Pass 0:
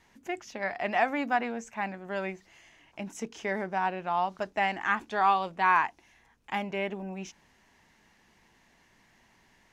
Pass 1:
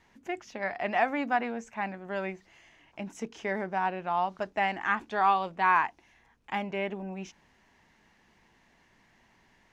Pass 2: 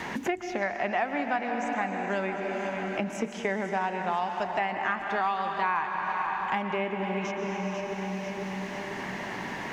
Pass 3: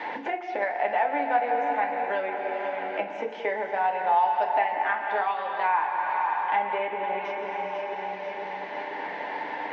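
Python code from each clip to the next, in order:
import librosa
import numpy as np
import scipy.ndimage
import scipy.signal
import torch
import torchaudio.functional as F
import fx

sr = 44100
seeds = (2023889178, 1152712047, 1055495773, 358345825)

y1 = fx.high_shelf(x, sr, hz=6100.0, db=-8.5)
y2 = fx.echo_feedback(y1, sr, ms=495, feedback_pct=43, wet_db=-14.5)
y2 = fx.rev_plate(y2, sr, seeds[0], rt60_s=3.2, hf_ratio=0.85, predelay_ms=105, drr_db=5.5)
y2 = fx.band_squash(y2, sr, depth_pct=100)
y3 = fx.cabinet(y2, sr, low_hz=440.0, low_slope=12, high_hz=3600.0, hz=(520.0, 850.0, 1200.0, 2800.0), db=(6, 7, -7, -4))
y3 = fx.rev_fdn(y3, sr, rt60_s=0.36, lf_ratio=1.0, hf_ratio=0.85, size_ms=20.0, drr_db=2.5)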